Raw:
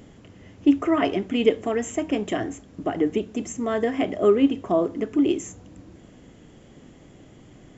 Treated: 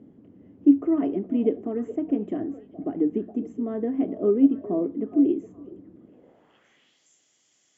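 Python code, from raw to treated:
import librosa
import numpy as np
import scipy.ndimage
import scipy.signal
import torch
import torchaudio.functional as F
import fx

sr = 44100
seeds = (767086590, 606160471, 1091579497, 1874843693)

y = fx.echo_stepped(x, sr, ms=416, hz=600.0, octaves=1.4, feedback_pct=70, wet_db=-11)
y = fx.filter_sweep_bandpass(y, sr, from_hz=270.0, to_hz=6200.0, start_s=6.03, end_s=7.09, q=1.8)
y = y * librosa.db_to_amplitude(1.5)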